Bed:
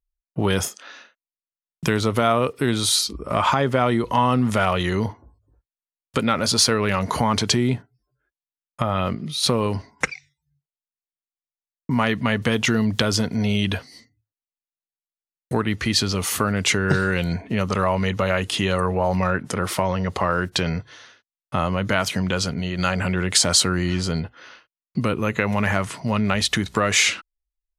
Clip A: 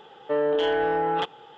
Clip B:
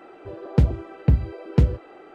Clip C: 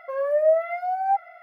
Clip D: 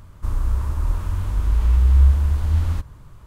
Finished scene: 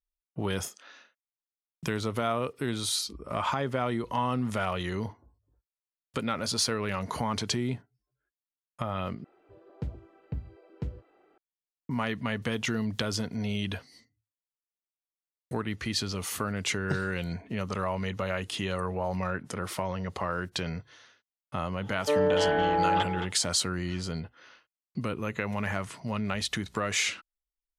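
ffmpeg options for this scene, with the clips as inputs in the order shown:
ffmpeg -i bed.wav -i cue0.wav -i cue1.wav -filter_complex "[0:a]volume=-10dB[link_01];[1:a]aecho=1:1:220:0.355[link_02];[link_01]asplit=2[link_03][link_04];[link_03]atrim=end=9.244[link_05];[2:a]atrim=end=2.14,asetpts=PTS-STARTPTS,volume=-18dB[link_06];[link_04]atrim=start=11.376[link_07];[link_02]atrim=end=1.57,asetpts=PTS-STARTPTS,volume=-1dB,afade=type=in:duration=0.1,afade=type=out:start_time=1.47:duration=0.1,adelay=21780[link_08];[link_05][link_06]acrossfade=duration=0.004:curve1=hsin:curve2=hsin[link_09];[link_09][link_07]acrossfade=duration=0.004:curve1=hsin:curve2=hsin[link_10];[link_10][link_08]amix=inputs=2:normalize=0" out.wav

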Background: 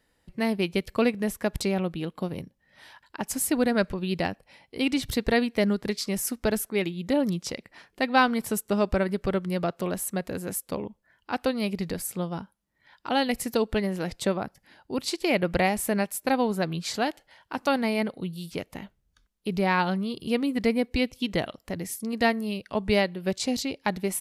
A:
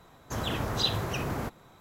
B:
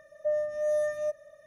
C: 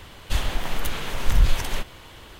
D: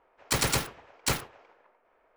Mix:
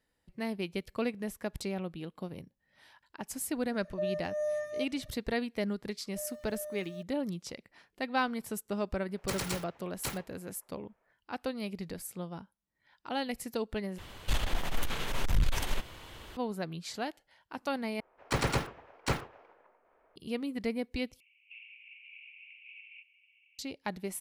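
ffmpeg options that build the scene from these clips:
ffmpeg -i bed.wav -i cue0.wav -i cue1.wav -i cue2.wav -i cue3.wav -filter_complex "[2:a]asplit=2[link_01][link_02];[4:a]asplit=2[link_03][link_04];[3:a]asplit=2[link_05][link_06];[0:a]volume=-9.5dB[link_07];[link_01]highpass=46[link_08];[link_02]aeval=exprs='val(0)*gte(abs(val(0)),0.00891)':channel_layout=same[link_09];[link_05]aeval=exprs='(tanh(7.94*val(0)+0.35)-tanh(0.35))/7.94':channel_layout=same[link_10];[link_04]lowpass=frequency=1700:poles=1[link_11];[link_06]asuperpass=centerf=2500:order=8:qfactor=4.2[link_12];[link_07]asplit=4[link_13][link_14][link_15][link_16];[link_13]atrim=end=13.984[link_17];[link_10]atrim=end=2.39,asetpts=PTS-STARTPTS,volume=-3dB[link_18];[link_14]atrim=start=16.366:end=18.004[link_19];[link_11]atrim=end=2.16[link_20];[link_15]atrim=start=20.156:end=21.204[link_21];[link_12]atrim=end=2.39,asetpts=PTS-STARTPTS,volume=-9.5dB[link_22];[link_16]atrim=start=23.586[link_23];[link_08]atrim=end=1.46,asetpts=PTS-STARTPTS,volume=-5.5dB,afade=type=in:duration=0.004:curve=hsin,afade=type=out:start_time=1.456:duration=0.004:curve=hsin,adelay=164493S[link_24];[link_09]atrim=end=1.46,asetpts=PTS-STARTPTS,volume=-16dB,afade=type=in:duration=0.004:curve=hsin,afade=type=out:start_time=1.456:duration=0.004:curve=hsin,adelay=5910[link_25];[link_03]atrim=end=2.16,asetpts=PTS-STARTPTS,volume=-10dB,afade=type=in:duration=0.004:curve=hsin,afade=type=out:start_time=2.156:duration=0.004:curve=hsin,adelay=8970[link_26];[link_17][link_18]acrossfade=duration=0.004:curve1=hsin:curve2=hsin[link_27];[link_27][link_19]acrossfade=duration=0.004:curve1=hsin:curve2=hsin[link_28];[link_28][link_20]acrossfade=duration=0.004:curve1=hsin:curve2=hsin[link_29];[link_29][link_21]acrossfade=duration=0.004:curve1=hsin:curve2=hsin[link_30];[link_30][link_22]acrossfade=duration=0.004:curve1=hsin:curve2=hsin[link_31];[link_31][link_23]acrossfade=duration=0.004:curve1=hsin:curve2=hsin[link_32];[link_32][link_24][link_25][link_26]amix=inputs=4:normalize=0" out.wav

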